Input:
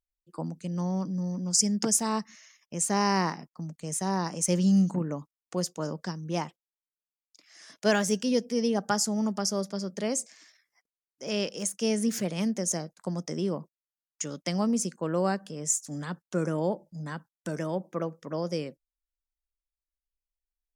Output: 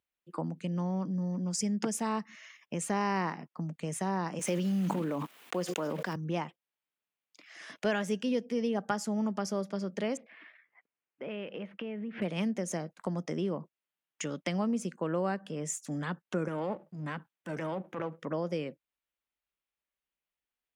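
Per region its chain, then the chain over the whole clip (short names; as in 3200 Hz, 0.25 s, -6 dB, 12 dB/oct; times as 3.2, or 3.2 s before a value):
4.39–6.16 block floating point 5-bit + HPF 220 Hz + sustainer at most 21 dB/s
10.17–12.22 inverse Chebyshev low-pass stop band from 6900 Hz, stop band 50 dB + compressor 4:1, threshold -42 dBFS
16.48–18.18 half-wave gain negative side -7 dB + HPF 55 Hz + transient shaper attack -10 dB, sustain +2 dB
whole clip: HPF 120 Hz; resonant high shelf 3900 Hz -9 dB, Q 1.5; compressor 2:1, threshold -42 dBFS; gain +6 dB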